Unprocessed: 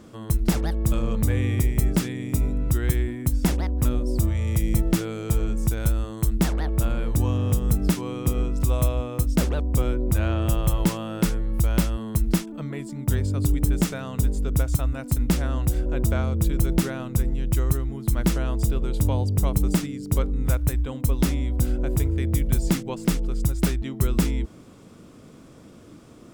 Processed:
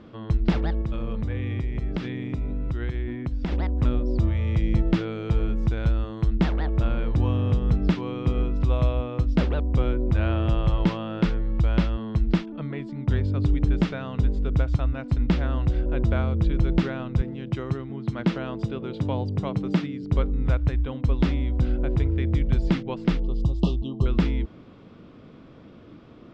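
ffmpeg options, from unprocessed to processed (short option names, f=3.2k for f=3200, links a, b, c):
-filter_complex "[0:a]asettb=1/sr,asplit=3[a][b][c];[a]atrim=end=0.814[d];[b]atrim=start=0.81:end=3.52,asetpts=PTS-STARTPTS,afade=t=in:d=0.004:c=qsin,afade=t=out:st=2.706:d=0.004:c=qsin,acompressor=threshold=-25dB:ratio=3:attack=3.2:release=140:knee=1:detection=peak[e];[c]atrim=start=3.516[f];[d][e]acrossfade=d=0.004:c1=hsin:c2=qsin[g];[g][f]acrossfade=d=0.004:c1=qsin:c2=hsin,asettb=1/sr,asplit=3[h][i][j];[h]atrim=end=17.214[k];[i]atrim=start=17.21:end=20.03,asetpts=PTS-STARTPTS,afade=t=in:d=0.004:c=qsin,afade=t=out:st=2.816:d=0.004:c=qsin,highpass=f=110:w=0.5412,highpass=f=110:w=1.3066[l];[j]atrim=start=20.026[m];[k][l]acrossfade=d=0.004:c1=hsin:c2=qsin[n];[n][m]acrossfade=d=0.004:c1=qsin:c2=hsin,asettb=1/sr,asplit=3[o][p][q];[o]atrim=end=23.234[r];[p]atrim=start=23.23:end=24.06,asetpts=PTS-STARTPTS,afade=t=in:d=0.004:c=qsin,afade=t=out:st=0.826:d=0.004:c=qsin,asuperstop=centerf=1800:order=20:qfactor=1.2[s];[q]atrim=start=24.056[t];[r][s]acrossfade=d=0.004:c1=hsin:c2=qsin[u];[u][t]acrossfade=d=0.004:c1=qsin:c2=hsin,lowpass=f=3.9k:w=0.5412,lowpass=f=3.9k:w=1.3066"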